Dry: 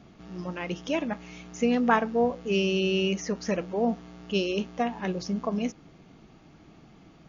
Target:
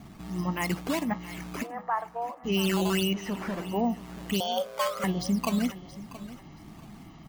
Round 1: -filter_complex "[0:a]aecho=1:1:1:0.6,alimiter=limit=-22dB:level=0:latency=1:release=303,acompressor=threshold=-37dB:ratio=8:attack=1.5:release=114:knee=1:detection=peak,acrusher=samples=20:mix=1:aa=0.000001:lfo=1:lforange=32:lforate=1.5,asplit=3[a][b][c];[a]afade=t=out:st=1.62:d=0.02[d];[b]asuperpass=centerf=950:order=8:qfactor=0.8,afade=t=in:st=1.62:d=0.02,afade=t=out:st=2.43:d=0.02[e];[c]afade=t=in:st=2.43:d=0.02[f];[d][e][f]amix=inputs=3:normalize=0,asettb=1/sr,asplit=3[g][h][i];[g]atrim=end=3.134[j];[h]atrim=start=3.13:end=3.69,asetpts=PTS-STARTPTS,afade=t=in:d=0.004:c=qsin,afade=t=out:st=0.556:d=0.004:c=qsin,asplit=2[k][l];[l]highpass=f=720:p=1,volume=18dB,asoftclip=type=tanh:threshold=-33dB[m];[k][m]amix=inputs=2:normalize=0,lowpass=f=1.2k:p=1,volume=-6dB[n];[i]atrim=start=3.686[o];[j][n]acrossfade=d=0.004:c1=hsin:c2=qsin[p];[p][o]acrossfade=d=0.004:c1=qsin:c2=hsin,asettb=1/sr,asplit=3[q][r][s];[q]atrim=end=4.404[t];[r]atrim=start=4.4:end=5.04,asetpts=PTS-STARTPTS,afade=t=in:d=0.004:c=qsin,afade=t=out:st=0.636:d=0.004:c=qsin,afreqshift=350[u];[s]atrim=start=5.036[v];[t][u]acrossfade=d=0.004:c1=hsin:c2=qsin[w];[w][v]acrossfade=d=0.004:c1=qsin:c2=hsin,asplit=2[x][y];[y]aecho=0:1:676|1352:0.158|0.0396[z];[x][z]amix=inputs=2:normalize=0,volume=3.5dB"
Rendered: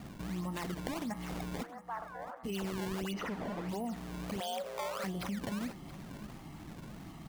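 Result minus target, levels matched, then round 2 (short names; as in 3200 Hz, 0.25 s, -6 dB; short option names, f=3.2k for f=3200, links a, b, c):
compressor: peak gain reduction +12.5 dB; decimation with a swept rate: distortion +6 dB
-filter_complex "[0:a]aecho=1:1:1:0.6,alimiter=limit=-22dB:level=0:latency=1:release=303,acrusher=samples=7:mix=1:aa=0.000001:lfo=1:lforange=11.2:lforate=1.5,asplit=3[a][b][c];[a]afade=t=out:st=1.62:d=0.02[d];[b]asuperpass=centerf=950:order=8:qfactor=0.8,afade=t=in:st=1.62:d=0.02,afade=t=out:st=2.43:d=0.02[e];[c]afade=t=in:st=2.43:d=0.02[f];[d][e][f]amix=inputs=3:normalize=0,asettb=1/sr,asplit=3[g][h][i];[g]atrim=end=3.134[j];[h]atrim=start=3.13:end=3.69,asetpts=PTS-STARTPTS,afade=t=in:d=0.004:c=qsin,afade=t=out:st=0.556:d=0.004:c=qsin,asplit=2[k][l];[l]highpass=f=720:p=1,volume=18dB,asoftclip=type=tanh:threshold=-33dB[m];[k][m]amix=inputs=2:normalize=0,lowpass=f=1.2k:p=1,volume=-6dB[n];[i]atrim=start=3.686[o];[j][n]acrossfade=d=0.004:c1=hsin:c2=qsin[p];[p][o]acrossfade=d=0.004:c1=qsin:c2=hsin,asettb=1/sr,asplit=3[q][r][s];[q]atrim=end=4.404[t];[r]atrim=start=4.4:end=5.04,asetpts=PTS-STARTPTS,afade=t=in:d=0.004:c=qsin,afade=t=out:st=0.636:d=0.004:c=qsin,afreqshift=350[u];[s]atrim=start=5.036[v];[t][u]acrossfade=d=0.004:c1=hsin:c2=qsin[w];[w][v]acrossfade=d=0.004:c1=qsin:c2=hsin,asplit=2[x][y];[y]aecho=0:1:676|1352:0.158|0.0396[z];[x][z]amix=inputs=2:normalize=0,volume=3.5dB"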